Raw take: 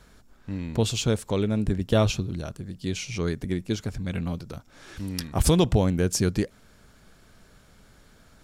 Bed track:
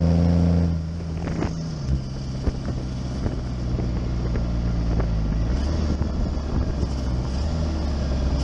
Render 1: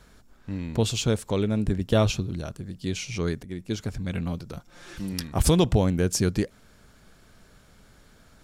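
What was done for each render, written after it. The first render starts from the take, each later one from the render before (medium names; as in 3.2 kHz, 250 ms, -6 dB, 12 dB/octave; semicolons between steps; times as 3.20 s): 3.43–3.83 s: fade in, from -13 dB; 4.56–5.13 s: comb 5.7 ms, depth 62%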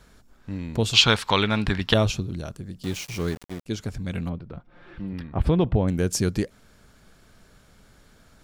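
0.93–1.94 s: high-order bell 2 kHz +16 dB 3 oct; 2.83–3.66 s: small samples zeroed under -35.5 dBFS; 4.29–5.88 s: distance through air 450 m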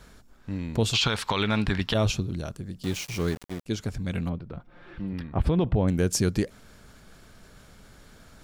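peak limiter -13.5 dBFS, peak gain reduction 11.5 dB; reverse; upward compressor, threshold -44 dBFS; reverse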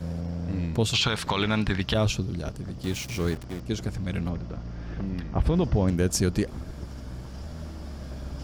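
add bed track -13.5 dB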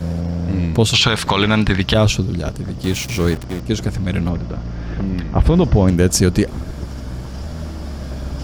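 trim +10 dB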